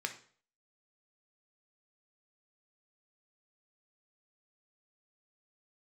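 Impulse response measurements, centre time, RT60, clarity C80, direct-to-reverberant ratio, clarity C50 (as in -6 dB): 10 ms, 0.45 s, 16.5 dB, 5.0 dB, 11.5 dB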